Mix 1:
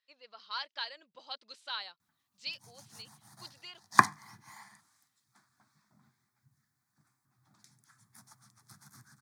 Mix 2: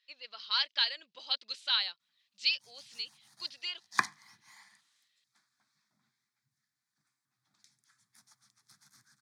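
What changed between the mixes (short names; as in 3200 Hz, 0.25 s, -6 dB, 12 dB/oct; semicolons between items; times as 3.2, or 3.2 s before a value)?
background -10.5 dB; master: add weighting filter D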